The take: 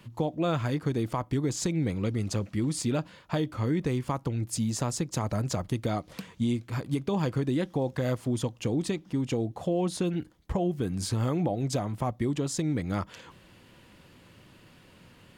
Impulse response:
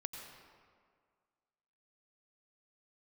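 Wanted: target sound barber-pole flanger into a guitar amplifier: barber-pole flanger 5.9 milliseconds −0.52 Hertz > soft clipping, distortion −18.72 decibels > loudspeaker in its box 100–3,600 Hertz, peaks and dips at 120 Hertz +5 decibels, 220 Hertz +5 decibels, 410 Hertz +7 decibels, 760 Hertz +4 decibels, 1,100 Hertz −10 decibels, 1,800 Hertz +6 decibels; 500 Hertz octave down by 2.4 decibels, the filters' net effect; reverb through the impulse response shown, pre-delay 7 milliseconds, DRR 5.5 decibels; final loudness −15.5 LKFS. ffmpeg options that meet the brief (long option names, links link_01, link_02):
-filter_complex "[0:a]equalizer=frequency=500:width_type=o:gain=-8.5,asplit=2[link_01][link_02];[1:a]atrim=start_sample=2205,adelay=7[link_03];[link_02][link_03]afir=irnorm=-1:irlink=0,volume=-4dB[link_04];[link_01][link_04]amix=inputs=2:normalize=0,asplit=2[link_05][link_06];[link_06]adelay=5.9,afreqshift=-0.52[link_07];[link_05][link_07]amix=inputs=2:normalize=1,asoftclip=threshold=-22.5dB,highpass=100,equalizer=frequency=120:width_type=q:width=4:gain=5,equalizer=frequency=220:width_type=q:width=4:gain=5,equalizer=frequency=410:width_type=q:width=4:gain=7,equalizer=frequency=760:width_type=q:width=4:gain=4,equalizer=frequency=1100:width_type=q:width=4:gain=-10,equalizer=frequency=1800:width_type=q:width=4:gain=6,lowpass=frequency=3600:width=0.5412,lowpass=frequency=3600:width=1.3066,volume=17dB"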